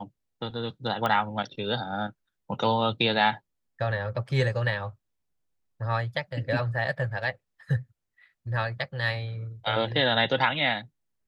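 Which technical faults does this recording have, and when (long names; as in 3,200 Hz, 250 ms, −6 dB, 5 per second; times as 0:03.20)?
0:01.06: click −14 dBFS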